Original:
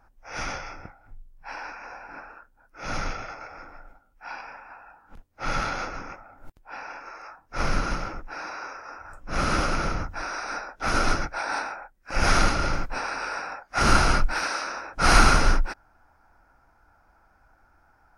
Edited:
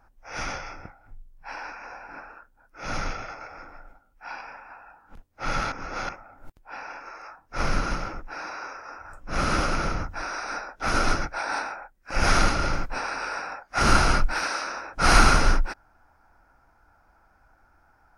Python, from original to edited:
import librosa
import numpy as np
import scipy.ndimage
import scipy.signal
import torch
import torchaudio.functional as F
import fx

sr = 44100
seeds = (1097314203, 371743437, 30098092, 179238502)

y = fx.edit(x, sr, fx.reverse_span(start_s=5.72, length_s=0.37), tone=tone)